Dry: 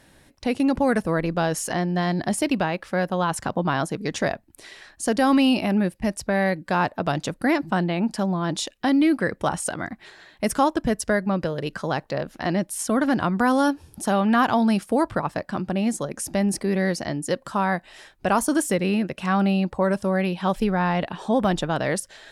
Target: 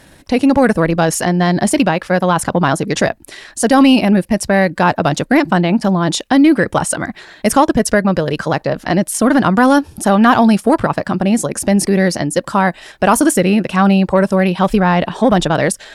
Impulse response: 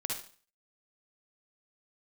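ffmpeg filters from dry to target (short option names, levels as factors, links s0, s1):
-af "atempo=1.4,acontrast=75,volume=1.5"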